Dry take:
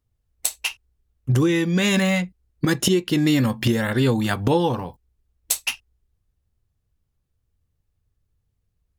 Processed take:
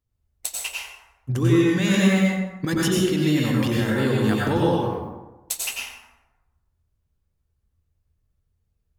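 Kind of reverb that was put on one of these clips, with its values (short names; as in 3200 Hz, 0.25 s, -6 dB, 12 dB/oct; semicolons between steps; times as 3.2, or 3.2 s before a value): plate-style reverb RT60 1.1 s, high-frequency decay 0.5×, pre-delay 80 ms, DRR -4 dB; gain -6 dB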